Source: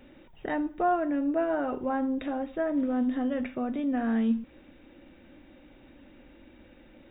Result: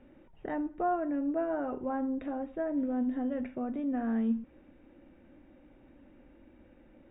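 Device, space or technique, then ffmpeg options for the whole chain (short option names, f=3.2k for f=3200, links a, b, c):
phone in a pocket: -filter_complex "[0:a]asettb=1/sr,asplit=3[a][b][c];[a]atrim=end=2.554[d];[b]atrim=start=2.55:end=3.61,asetpts=PTS-STARTPTS,afade=t=in:d=0.004:c=qsin,afade=t=out:st=1.056:d=0.004:c=qsin,bandreject=f=1.2k:w=6.8[e];[c]atrim=start=3.606[f];[d][e]acrossfade=d=0.004:c1=hsin:c2=qsin[g];[g][f]acrossfade=d=0.004:c1=qsin:c2=hsin,lowpass=3.1k,highshelf=f=2.2k:g=-10.5,volume=-3.5dB"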